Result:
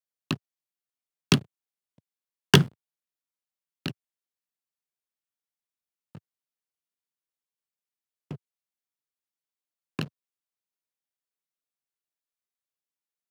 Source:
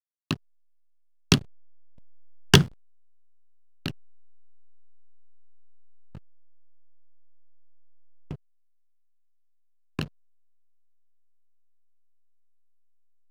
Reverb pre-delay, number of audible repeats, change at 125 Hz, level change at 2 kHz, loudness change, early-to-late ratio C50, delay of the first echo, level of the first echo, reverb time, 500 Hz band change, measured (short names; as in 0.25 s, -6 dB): none, none, -1.0 dB, -0.5 dB, -1.0 dB, none, none, none, none, 0.0 dB